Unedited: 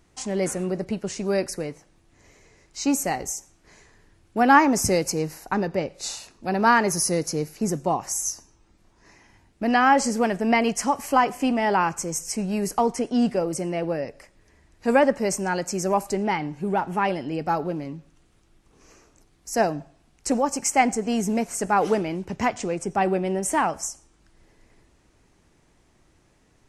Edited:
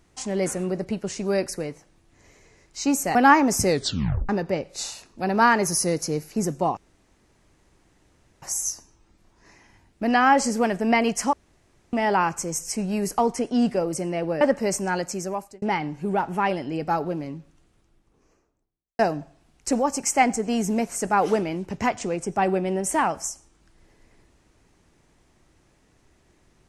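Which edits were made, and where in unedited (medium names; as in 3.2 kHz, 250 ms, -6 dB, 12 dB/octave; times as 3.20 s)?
3.15–4.40 s: delete
4.94 s: tape stop 0.60 s
8.02 s: insert room tone 1.65 s
10.93–11.53 s: room tone
14.01–15.00 s: delete
15.58–16.21 s: fade out
17.90–19.58 s: studio fade out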